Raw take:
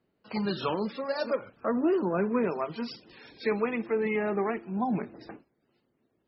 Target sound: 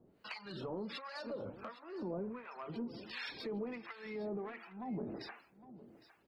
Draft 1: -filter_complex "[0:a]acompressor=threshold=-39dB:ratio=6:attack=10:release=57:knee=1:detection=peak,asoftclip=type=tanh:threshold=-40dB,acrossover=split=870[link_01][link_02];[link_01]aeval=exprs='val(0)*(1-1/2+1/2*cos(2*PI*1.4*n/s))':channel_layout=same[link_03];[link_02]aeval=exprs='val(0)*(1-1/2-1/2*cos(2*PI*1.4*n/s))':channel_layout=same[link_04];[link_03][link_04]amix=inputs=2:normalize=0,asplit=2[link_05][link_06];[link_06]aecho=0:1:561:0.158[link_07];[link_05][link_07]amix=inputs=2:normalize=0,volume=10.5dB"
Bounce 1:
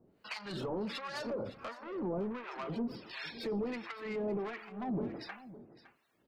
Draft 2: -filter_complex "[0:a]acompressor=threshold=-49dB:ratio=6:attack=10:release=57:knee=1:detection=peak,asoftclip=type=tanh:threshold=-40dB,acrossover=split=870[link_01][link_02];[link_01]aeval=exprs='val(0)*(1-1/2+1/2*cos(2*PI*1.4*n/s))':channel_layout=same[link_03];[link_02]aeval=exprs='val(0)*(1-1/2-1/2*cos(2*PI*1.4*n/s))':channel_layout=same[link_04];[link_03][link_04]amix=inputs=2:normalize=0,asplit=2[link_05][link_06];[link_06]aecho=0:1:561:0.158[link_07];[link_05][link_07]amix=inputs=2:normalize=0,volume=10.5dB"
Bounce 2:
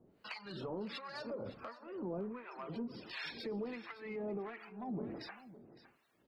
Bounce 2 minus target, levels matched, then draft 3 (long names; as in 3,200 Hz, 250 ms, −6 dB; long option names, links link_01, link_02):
echo 248 ms early
-filter_complex "[0:a]acompressor=threshold=-49dB:ratio=6:attack=10:release=57:knee=1:detection=peak,asoftclip=type=tanh:threshold=-40dB,acrossover=split=870[link_01][link_02];[link_01]aeval=exprs='val(0)*(1-1/2+1/2*cos(2*PI*1.4*n/s))':channel_layout=same[link_03];[link_02]aeval=exprs='val(0)*(1-1/2-1/2*cos(2*PI*1.4*n/s))':channel_layout=same[link_04];[link_03][link_04]amix=inputs=2:normalize=0,asplit=2[link_05][link_06];[link_06]aecho=0:1:809:0.158[link_07];[link_05][link_07]amix=inputs=2:normalize=0,volume=10.5dB"